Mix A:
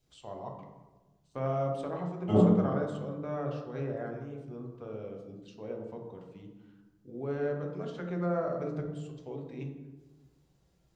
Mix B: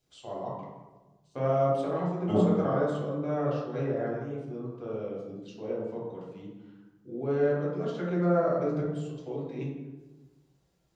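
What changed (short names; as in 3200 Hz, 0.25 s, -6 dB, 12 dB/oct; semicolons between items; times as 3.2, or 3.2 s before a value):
first voice: send +8.0 dB; master: add low shelf 110 Hz -9 dB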